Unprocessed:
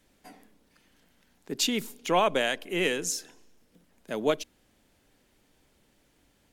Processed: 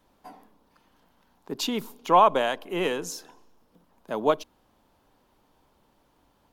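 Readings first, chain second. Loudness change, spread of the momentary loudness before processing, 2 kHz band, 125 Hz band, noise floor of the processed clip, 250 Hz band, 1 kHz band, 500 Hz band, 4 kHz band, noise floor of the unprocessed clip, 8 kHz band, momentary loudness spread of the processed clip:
+3.0 dB, 11 LU, -3.0 dB, 0.0 dB, -66 dBFS, +0.5 dB, +8.5 dB, +3.0 dB, -3.0 dB, -67 dBFS, -6.5 dB, 17 LU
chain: ten-band graphic EQ 1 kHz +12 dB, 2 kHz -7 dB, 8 kHz -8 dB

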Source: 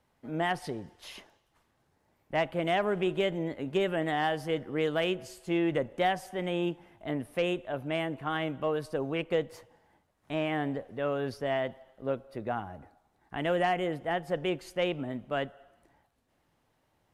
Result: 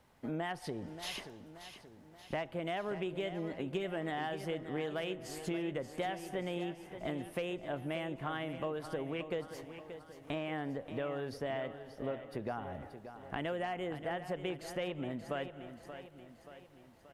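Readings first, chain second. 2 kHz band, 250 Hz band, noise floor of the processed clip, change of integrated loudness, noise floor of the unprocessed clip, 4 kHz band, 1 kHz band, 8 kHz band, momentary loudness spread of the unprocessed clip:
-7.5 dB, -6.5 dB, -58 dBFS, -7.5 dB, -73 dBFS, -7.0 dB, -8.0 dB, -1.0 dB, 9 LU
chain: compression 5:1, threshold -42 dBFS, peak gain reduction 16.5 dB; on a send: feedback delay 580 ms, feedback 52%, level -11 dB; on the sum: trim +5.5 dB

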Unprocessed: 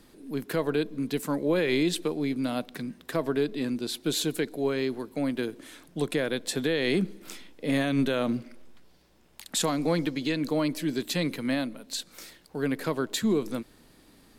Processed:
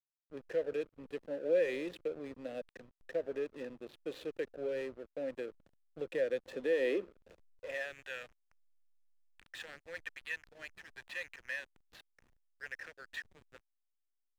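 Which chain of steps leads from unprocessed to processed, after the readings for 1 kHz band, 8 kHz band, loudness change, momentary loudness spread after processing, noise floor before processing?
-19.0 dB, under -25 dB, -10.0 dB, 18 LU, -58 dBFS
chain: vowel filter e; high-pass sweep 73 Hz -> 1.5 kHz, 5.89–8.10 s; hysteresis with a dead band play -45 dBFS; trim +1 dB

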